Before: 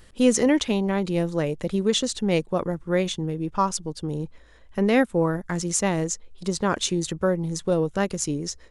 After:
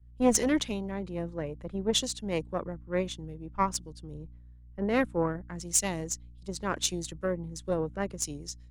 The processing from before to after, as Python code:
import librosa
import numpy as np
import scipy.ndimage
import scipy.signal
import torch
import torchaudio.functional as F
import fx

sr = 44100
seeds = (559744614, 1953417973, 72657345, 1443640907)

y = fx.add_hum(x, sr, base_hz=60, snr_db=13)
y = fx.cheby_harmonics(y, sr, harmonics=(2, 5, 7), levels_db=(-8, -26, -30), full_scale_db=-7.0)
y = fx.band_widen(y, sr, depth_pct=100)
y = F.gain(torch.from_numpy(y), -8.5).numpy()